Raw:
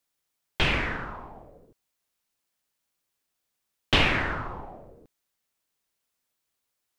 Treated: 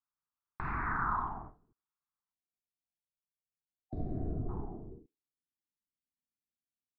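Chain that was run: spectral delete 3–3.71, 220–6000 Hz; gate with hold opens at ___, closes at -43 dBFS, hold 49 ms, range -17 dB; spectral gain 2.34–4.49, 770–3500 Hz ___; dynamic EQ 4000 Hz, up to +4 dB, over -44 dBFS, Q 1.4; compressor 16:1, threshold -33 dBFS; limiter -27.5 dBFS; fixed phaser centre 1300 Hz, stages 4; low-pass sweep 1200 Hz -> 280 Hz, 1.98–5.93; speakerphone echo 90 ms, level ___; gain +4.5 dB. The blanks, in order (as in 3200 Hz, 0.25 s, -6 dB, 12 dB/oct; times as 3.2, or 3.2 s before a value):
-40 dBFS, -23 dB, -29 dB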